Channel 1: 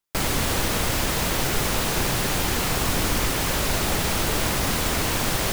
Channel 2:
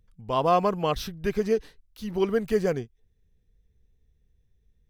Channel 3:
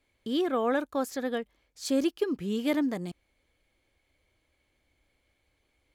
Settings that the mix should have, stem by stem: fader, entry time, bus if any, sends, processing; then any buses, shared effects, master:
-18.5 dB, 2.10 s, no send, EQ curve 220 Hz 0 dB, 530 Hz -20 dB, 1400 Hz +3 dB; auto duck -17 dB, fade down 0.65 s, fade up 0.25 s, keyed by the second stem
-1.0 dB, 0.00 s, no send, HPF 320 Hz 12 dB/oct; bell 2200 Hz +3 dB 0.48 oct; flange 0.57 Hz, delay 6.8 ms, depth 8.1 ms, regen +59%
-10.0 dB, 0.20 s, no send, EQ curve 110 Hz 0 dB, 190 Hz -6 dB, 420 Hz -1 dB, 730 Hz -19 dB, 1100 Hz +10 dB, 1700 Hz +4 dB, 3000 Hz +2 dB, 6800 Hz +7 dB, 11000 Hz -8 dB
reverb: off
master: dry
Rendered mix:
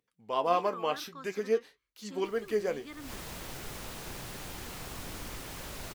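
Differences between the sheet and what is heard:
stem 1: missing EQ curve 220 Hz 0 dB, 530 Hz -20 dB, 1400 Hz +3 dB; stem 3 -10.0 dB -> -16.5 dB

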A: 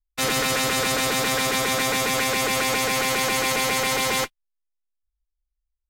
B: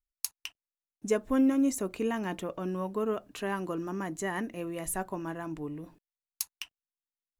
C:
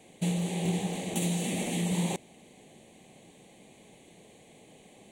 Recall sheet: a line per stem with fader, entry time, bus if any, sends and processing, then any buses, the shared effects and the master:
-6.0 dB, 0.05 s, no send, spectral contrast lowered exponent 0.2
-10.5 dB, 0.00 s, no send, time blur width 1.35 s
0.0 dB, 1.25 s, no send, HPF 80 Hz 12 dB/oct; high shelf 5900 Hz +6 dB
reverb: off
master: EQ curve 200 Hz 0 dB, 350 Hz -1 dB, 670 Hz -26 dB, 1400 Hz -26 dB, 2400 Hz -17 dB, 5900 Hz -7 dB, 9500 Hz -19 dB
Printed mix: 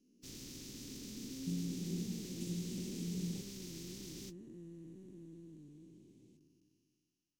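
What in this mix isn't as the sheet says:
stem A -6.0 dB -> -16.0 dB; stem C 0.0 dB -> -10.0 dB

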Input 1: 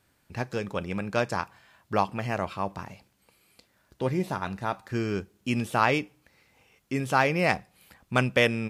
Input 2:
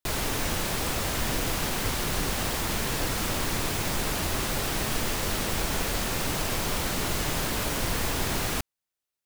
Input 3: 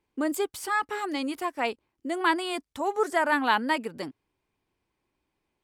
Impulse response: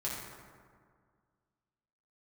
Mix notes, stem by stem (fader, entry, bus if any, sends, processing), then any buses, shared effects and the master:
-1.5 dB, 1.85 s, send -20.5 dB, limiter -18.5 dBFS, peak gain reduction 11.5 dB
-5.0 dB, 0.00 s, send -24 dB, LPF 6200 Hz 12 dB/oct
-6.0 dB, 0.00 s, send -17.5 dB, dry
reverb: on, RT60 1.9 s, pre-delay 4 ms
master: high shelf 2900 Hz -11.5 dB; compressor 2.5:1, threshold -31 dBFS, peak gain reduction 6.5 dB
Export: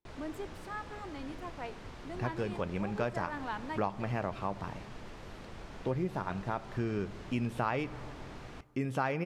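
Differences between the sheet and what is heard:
stem 1: missing limiter -18.5 dBFS, peak gain reduction 11.5 dB; stem 2 -5.0 dB -> -17.0 dB; stem 3 -6.0 dB -> -13.5 dB

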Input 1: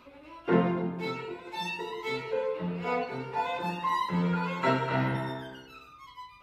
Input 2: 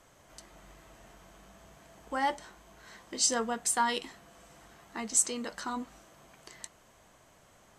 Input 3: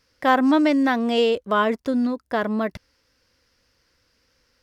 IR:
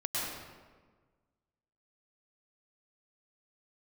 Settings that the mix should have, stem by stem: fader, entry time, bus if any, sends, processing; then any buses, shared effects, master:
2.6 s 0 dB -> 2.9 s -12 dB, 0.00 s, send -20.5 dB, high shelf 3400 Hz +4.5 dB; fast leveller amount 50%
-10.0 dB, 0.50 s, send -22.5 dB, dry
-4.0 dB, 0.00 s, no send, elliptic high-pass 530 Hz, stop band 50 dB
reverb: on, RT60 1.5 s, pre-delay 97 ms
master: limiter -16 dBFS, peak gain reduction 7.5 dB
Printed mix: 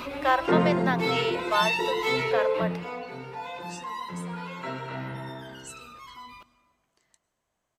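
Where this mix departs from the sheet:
stem 2 -10.0 dB -> -20.0 dB; master: missing limiter -16 dBFS, peak gain reduction 7.5 dB

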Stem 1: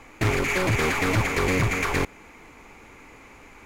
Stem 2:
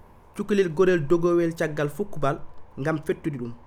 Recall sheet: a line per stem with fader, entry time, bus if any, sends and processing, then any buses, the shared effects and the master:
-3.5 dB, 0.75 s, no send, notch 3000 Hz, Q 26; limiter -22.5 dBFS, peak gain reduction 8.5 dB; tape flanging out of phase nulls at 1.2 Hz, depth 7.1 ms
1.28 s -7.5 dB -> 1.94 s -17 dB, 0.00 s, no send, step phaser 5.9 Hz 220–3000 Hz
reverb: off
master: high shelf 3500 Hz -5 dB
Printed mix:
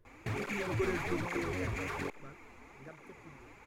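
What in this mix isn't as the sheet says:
stem 1: entry 0.75 s -> 0.05 s; stem 2 -7.5 dB -> -14.5 dB

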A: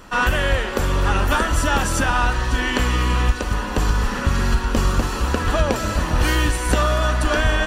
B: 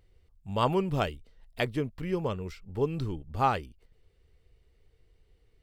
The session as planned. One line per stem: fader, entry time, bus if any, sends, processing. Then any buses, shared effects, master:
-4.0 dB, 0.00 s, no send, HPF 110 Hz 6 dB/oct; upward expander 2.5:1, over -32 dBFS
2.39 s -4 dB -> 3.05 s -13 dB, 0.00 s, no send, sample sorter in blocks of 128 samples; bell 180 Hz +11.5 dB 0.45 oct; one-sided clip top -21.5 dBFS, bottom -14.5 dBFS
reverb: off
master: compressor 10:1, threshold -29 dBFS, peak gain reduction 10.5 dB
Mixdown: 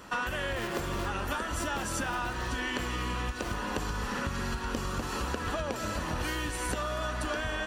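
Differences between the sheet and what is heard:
stem A: missing upward expander 2.5:1, over -32 dBFS; stem B: missing bell 180 Hz +11.5 dB 0.45 oct

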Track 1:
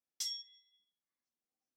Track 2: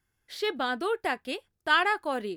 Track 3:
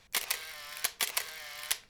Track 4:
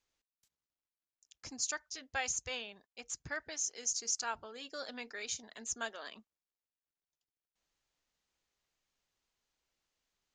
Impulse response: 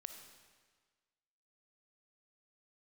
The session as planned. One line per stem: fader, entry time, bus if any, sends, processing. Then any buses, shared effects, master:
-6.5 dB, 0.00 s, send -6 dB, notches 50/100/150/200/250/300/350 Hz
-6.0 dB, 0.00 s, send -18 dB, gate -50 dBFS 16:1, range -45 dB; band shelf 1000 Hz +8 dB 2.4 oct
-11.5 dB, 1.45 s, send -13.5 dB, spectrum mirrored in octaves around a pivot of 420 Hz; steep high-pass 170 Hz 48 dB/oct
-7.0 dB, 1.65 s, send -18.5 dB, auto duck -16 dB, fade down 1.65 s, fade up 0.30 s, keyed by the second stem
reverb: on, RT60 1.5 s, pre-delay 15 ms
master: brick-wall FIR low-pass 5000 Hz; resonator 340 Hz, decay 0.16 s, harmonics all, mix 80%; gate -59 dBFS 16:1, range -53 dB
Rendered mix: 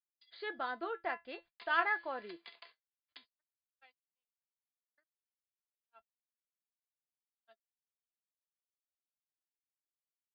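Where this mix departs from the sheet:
stem 2: send off; stem 3: missing spectrum mirrored in octaves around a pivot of 420 Hz; stem 4 -7.0 dB -> -15.5 dB

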